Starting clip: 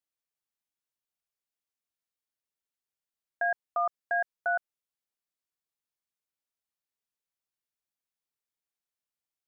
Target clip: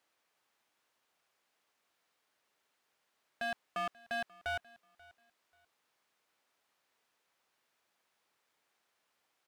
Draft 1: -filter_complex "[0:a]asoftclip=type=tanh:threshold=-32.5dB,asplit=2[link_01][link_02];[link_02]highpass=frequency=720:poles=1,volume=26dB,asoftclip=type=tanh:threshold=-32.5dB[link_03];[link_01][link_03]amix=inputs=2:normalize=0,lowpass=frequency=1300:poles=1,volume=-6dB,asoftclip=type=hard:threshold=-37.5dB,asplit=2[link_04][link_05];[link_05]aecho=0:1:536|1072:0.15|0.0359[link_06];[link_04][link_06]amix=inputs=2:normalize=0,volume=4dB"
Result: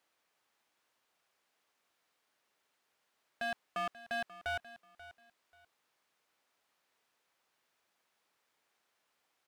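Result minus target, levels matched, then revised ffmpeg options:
echo-to-direct +6.5 dB
-filter_complex "[0:a]asoftclip=type=tanh:threshold=-32.5dB,asplit=2[link_01][link_02];[link_02]highpass=frequency=720:poles=1,volume=26dB,asoftclip=type=tanh:threshold=-32.5dB[link_03];[link_01][link_03]amix=inputs=2:normalize=0,lowpass=frequency=1300:poles=1,volume=-6dB,asoftclip=type=hard:threshold=-37.5dB,asplit=2[link_04][link_05];[link_05]aecho=0:1:536|1072:0.0708|0.017[link_06];[link_04][link_06]amix=inputs=2:normalize=0,volume=4dB"

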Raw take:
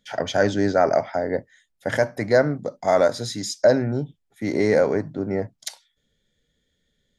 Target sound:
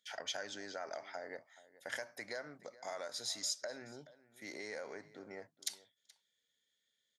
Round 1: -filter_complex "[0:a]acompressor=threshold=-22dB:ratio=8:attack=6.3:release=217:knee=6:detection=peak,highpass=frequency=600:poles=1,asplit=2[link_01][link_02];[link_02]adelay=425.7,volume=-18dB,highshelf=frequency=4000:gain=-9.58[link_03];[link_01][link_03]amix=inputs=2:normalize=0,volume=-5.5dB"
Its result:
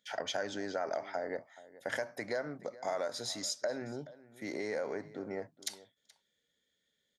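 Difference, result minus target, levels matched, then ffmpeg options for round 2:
500 Hz band +4.0 dB
-filter_complex "[0:a]acompressor=threshold=-22dB:ratio=8:attack=6.3:release=217:knee=6:detection=peak,highpass=frequency=2400:poles=1,asplit=2[link_01][link_02];[link_02]adelay=425.7,volume=-18dB,highshelf=frequency=4000:gain=-9.58[link_03];[link_01][link_03]amix=inputs=2:normalize=0,volume=-5.5dB"

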